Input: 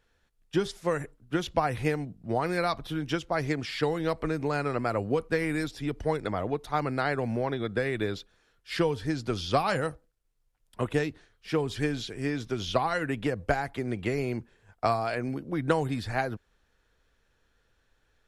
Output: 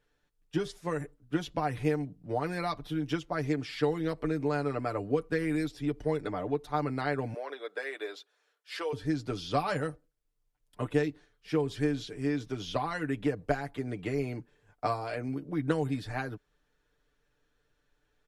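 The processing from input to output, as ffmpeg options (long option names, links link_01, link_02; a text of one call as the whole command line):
ffmpeg -i in.wav -filter_complex "[0:a]asettb=1/sr,asplit=3[link_01][link_02][link_03];[link_01]atrim=end=7.344[link_04];[link_02]atrim=start=7.34:end=8.93,asetpts=PTS-STARTPTS,afade=type=in:duration=0.004:curve=qsin,afade=type=out:start_time=1.586:duration=0.004:curve=qsin,highpass=frequency=470:width=0.5412,highpass=frequency=470:width=1.3066[link_05];[link_03]atrim=start=8.926[link_06];[link_04][link_05]acrossfade=duration=0.004:curve1=hsin:curve2=qsin[link_07];[link_07][link_06]acrossfade=duration=0.004:curve1=qsin:curve2=hsin,equalizer=frequency=320:width_type=o:width=1.7:gain=4,aecho=1:1:6.8:0.65,volume=-7dB" out.wav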